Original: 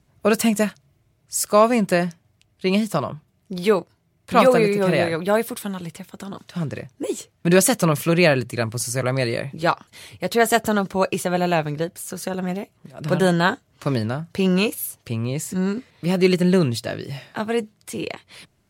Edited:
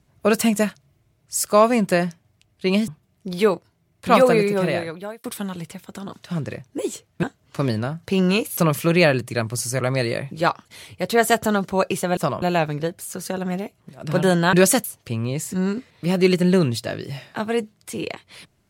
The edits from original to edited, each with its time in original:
2.88–3.13 s: move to 11.39 s
4.72–5.49 s: fade out
7.48–7.79 s: swap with 13.50–14.84 s

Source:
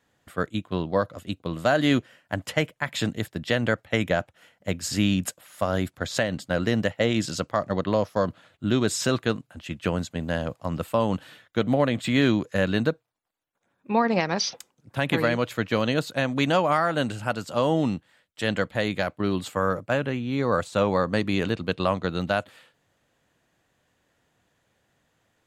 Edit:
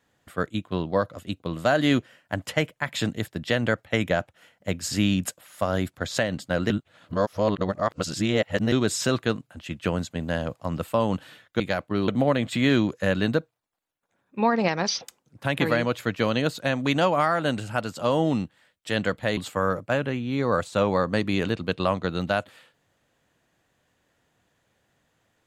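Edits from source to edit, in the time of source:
6.70–8.72 s: reverse
18.89–19.37 s: move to 11.60 s

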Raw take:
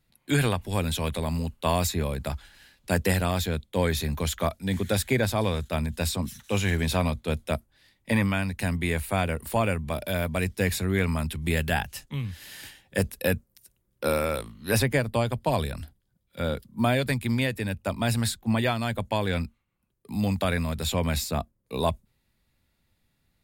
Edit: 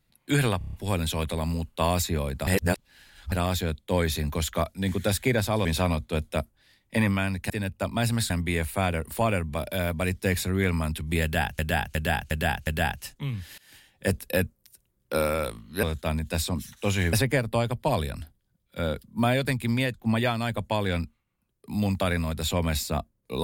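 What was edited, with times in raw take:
0.58 s: stutter 0.03 s, 6 plays
2.32–3.17 s: reverse
5.50–6.80 s: move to 14.74 s
11.58–11.94 s: loop, 5 plays
12.49–13.00 s: fade in, from -22.5 dB
17.55–18.35 s: move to 8.65 s

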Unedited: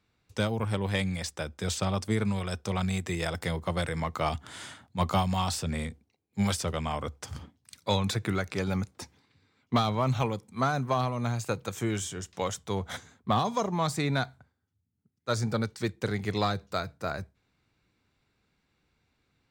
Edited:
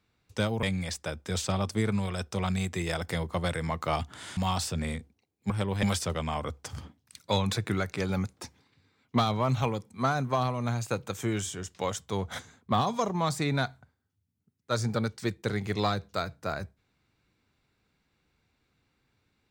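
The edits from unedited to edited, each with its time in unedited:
0.63–0.96 s: move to 6.41 s
4.70–5.28 s: delete

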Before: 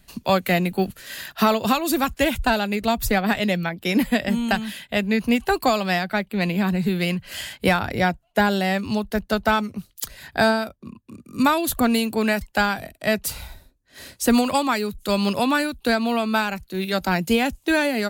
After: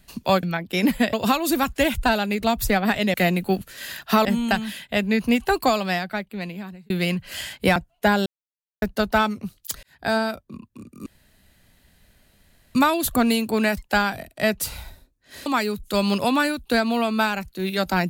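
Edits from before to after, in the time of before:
0.43–1.54 s: swap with 3.55–4.25 s
5.66–6.90 s: fade out
7.76–8.09 s: delete
8.59–9.15 s: mute
10.16–10.64 s: fade in
11.39 s: insert room tone 1.69 s
14.10–14.61 s: delete

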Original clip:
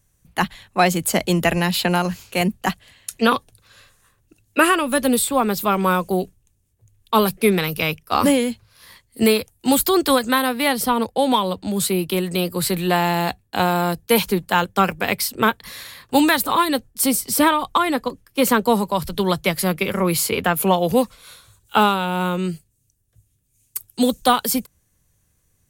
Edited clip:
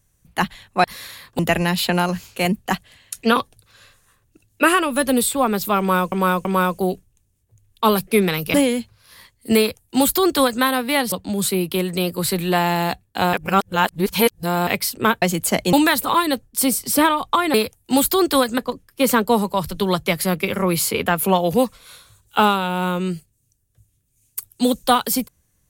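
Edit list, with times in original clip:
0.84–1.35 s: swap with 15.60–16.15 s
5.75–6.08 s: loop, 3 plays
7.84–8.25 s: delete
9.29–10.33 s: copy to 17.96 s
10.83–11.50 s: delete
13.71–15.05 s: reverse

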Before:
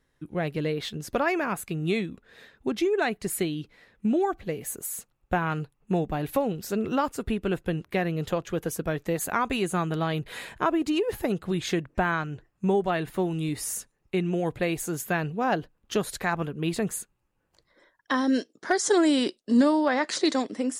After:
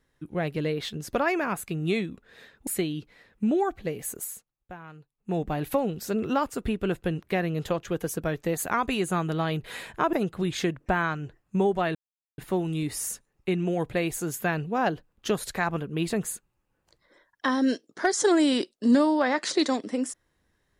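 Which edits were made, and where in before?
2.67–3.29 s: delete
4.84–6.04 s: dip -17 dB, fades 0.23 s
10.75–11.22 s: delete
13.04 s: insert silence 0.43 s

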